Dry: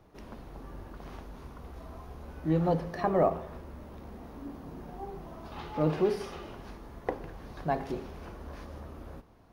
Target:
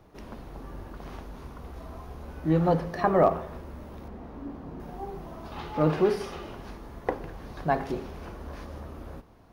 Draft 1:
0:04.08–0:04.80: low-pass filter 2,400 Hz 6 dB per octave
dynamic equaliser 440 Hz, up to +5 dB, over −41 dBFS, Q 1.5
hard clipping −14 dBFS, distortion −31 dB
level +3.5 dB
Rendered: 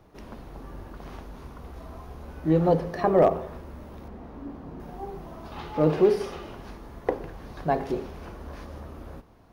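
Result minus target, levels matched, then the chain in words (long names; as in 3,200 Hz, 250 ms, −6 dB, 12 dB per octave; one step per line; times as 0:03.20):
1,000 Hz band −3.5 dB
0:04.08–0:04.80: low-pass filter 2,400 Hz 6 dB per octave
dynamic equaliser 1,400 Hz, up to +5 dB, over −41 dBFS, Q 1.5
hard clipping −14 dBFS, distortion −42 dB
level +3.5 dB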